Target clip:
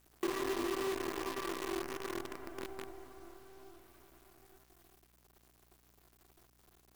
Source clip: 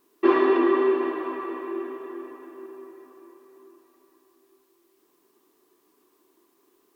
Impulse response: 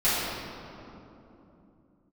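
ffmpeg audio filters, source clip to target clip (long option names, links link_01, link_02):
-af "acompressor=threshold=-38dB:ratio=4,acrusher=bits=7:dc=4:mix=0:aa=0.000001,aeval=exprs='val(0)+0.000316*(sin(2*PI*60*n/s)+sin(2*PI*2*60*n/s)/2+sin(2*PI*3*60*n/s)/3+sin(2*PI*4*60*n/s)/4+sin(2*PI*5*60*n/s)/5)':channel_layout=same"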